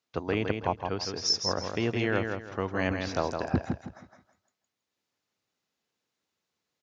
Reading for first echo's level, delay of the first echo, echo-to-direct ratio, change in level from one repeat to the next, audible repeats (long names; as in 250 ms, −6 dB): −5.5 dB, 162 ms, −5.0 dB, −11.0 dB, 3